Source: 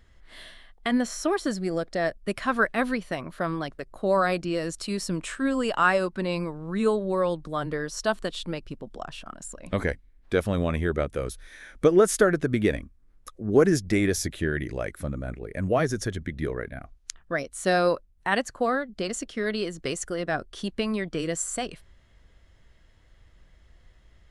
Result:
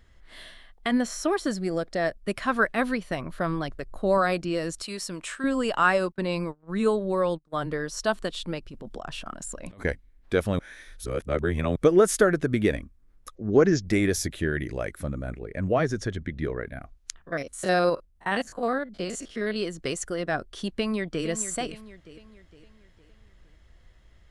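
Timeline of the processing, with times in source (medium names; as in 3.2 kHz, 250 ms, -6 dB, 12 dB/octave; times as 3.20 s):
3.10–4.18 s: bass shelf 90 Hz +10.5 dB
4.82–5.44 s: bass shelf 350 Hz -11.5 dB
6.12–7.54 s: gate -34 dBFS, range -28 dB
8.70–9.85 s: compressor with a negative ratio -39 dBFS
10.59–11.76 s: reverse
13.35–13.82 s: steep low-pass 6.8 kHz 72 dB/octave
15.43–16.67 s: distance through air 65 m
17.22–19.56 s: spectrogram pixelated in time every 50 ms
20.75–21.26 s: echo throw 460 ms, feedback 45%, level -11.5 dB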